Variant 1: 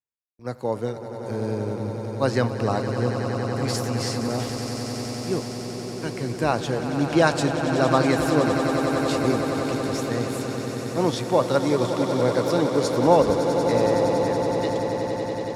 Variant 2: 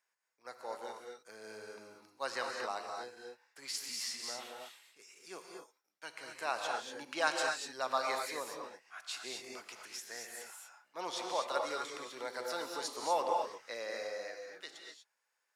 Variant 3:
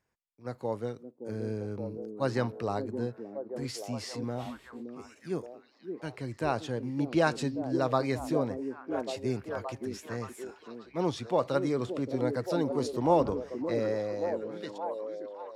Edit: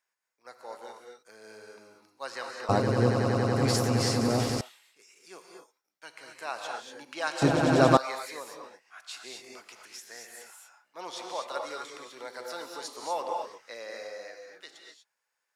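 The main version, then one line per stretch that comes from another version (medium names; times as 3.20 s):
2
2.69–4.61 s: from 1
7.42–7.97 s: from 1
not used: 3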